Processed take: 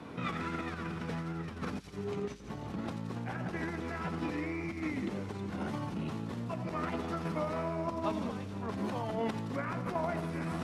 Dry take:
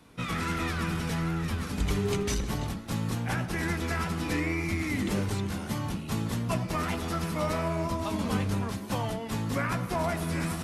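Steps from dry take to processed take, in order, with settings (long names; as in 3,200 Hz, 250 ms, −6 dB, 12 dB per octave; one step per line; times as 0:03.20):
spectral tilt −4.5 dB per octave
compressor whose output falls as the input rises −25 dBFS, ratio −1
delay with a high-pass on its return 85 ms, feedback 75%, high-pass 4,500 Hz, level −6 dB
brickwall limiter −21.5 dBFS, peak gain reduction 10.5 dB
meter weighting curve A
level +4 dB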